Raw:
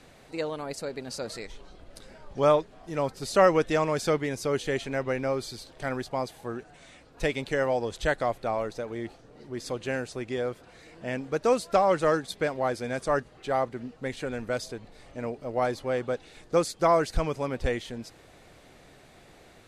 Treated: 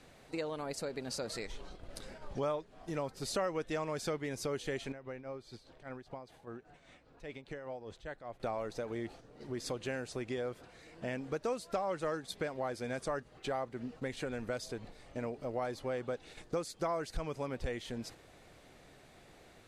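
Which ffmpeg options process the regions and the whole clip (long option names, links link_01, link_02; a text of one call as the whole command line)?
ffmpeg -i in.wav -filter_complex "[0:a]asettb=1/sr,asplit=3[link_01][link_02][link_03];[link_01]atrim=end=4.924[link_04];[link_02]atrim=start=4.92:end=8.4,asetpts=PTS-STARTPTS,afade=type=in:duration=0.004:curve=qsin,afade=type=out:start_time=3.476:duration=0.004:curve=qsin,acompressor=threshold=-44dB:ratio=3:attack=3.2:release=140:knee=1:detection=peak,tremolo=f=5:d=0.55,aemphasis=mode=reproduction:type=50kf[link_05];[link_03]atrim=start=8.396[link_06];[link_04][link_05]acrossfade=duration=0.004:curve1=hsin:curve2=qsin[link_07];[link_07][link_06]acrossfade=duration=0.004:curve1=qsin:curve2=hsin,agate=range=-6dB:threshold=-48dB:ratio=16:detection=peak,acompressor=threshold=-38dB:ratio=3,volume=1dB" out.wav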